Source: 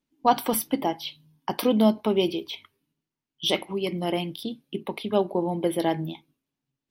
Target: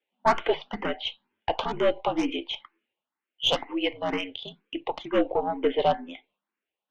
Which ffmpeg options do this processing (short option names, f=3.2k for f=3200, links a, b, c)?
-filter_complex "[0:a]highpass=f=450:t=q:w=0.5412,highpass=f=450:t=q:w=1.307,lowpass=f=3.3k:t=q:w=0.5176,lowpass=f=3.3k:t=q:w=0.7071,lowpass=f=3.3k:t=q:w=1.932,afreqshift=-68,aeval=exprs='(tanh(10*val(0)+0.45)-tanh(0.45))/10':c=same,asplit=2[a][b];[b]afreqshift=2.1[c];[a][c]amix=inputs=2:normalize=1,volume=9dB"